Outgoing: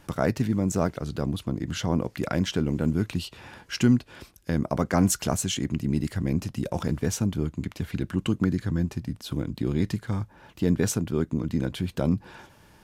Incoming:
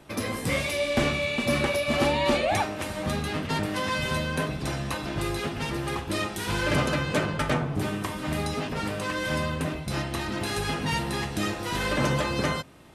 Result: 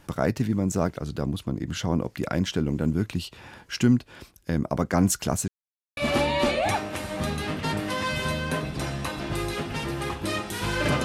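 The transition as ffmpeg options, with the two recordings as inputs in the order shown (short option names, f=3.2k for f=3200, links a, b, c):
-filter_complex "[0:a]apad=whole_dur=11.04,atrim=end=11.04,asplit=2[a][b];[a]atrim=end=5.48,asetpts=PTS-STARTPTS,afade=t=out:st=5.476:d=0.004:c=hsin[c];[b]atrim=start=5.48:end=5.97,asetpts=PTS-STARTPTS,volume=0[d];[1:a]atrim=start=1.83:end=6.9,asetpts=PTS-STARTPTS,afade=t=in:d=0.004:c=hsin[e];[c][d][e]concat=n=3:v=0:a=1"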